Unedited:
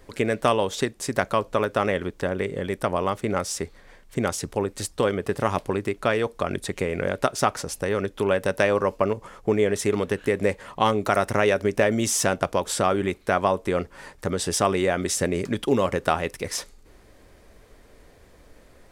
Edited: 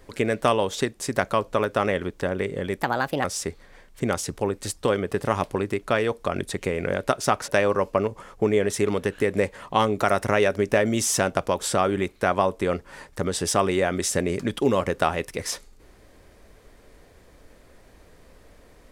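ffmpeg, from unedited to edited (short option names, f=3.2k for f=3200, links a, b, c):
-filter_complex "[0:a]asplit=4[a][b][c][d];[a]atrim=end=2.824[e];[b]atrim=start=2.82:end=3.39,asetpts=PTS-STARTPTS,asetrate=59535,aresample=44100[f];[c]atrim=start=3.386:end=7.632[g];[d]atrim=start=8.538[h];[e][f]acrossfade=d=0.004:c1=hsin:c2=hsin[i];[i][g]acrossfade=d=0.004:c1=hsin:c2=hsin[j];[j][h]acrossfade=d=0.004:c1=hsin:c2=hsin"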